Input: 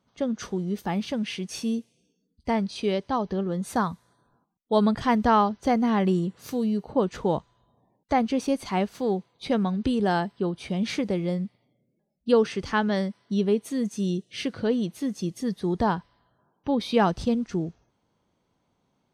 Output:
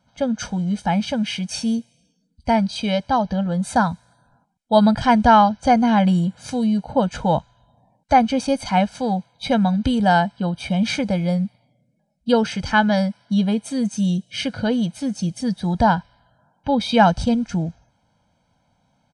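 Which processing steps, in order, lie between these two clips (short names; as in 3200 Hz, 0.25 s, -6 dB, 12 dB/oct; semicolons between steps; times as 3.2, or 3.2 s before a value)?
comb 1.3 ms, depth 98%; downsampling 22050 Hz; gain +4.5 dB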